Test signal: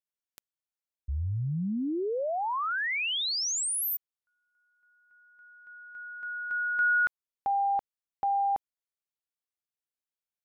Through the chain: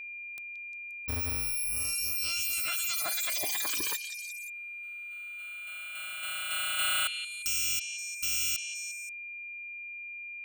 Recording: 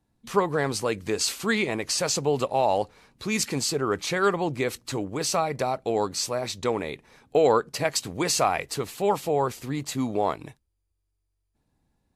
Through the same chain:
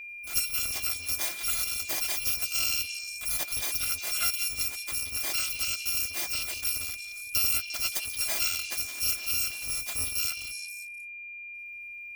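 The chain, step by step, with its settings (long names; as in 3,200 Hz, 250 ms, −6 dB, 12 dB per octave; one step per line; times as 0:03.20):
samples in bit-reversed order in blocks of 256 samples
downward compressor 1.5 to 1, threshold −35 dBFS
echo through a band-pass that steps 176 ms, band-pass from 3,400 Hz, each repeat 0.7 octaves, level −5 dB
steady tone 2,400 Hz −39 dBFS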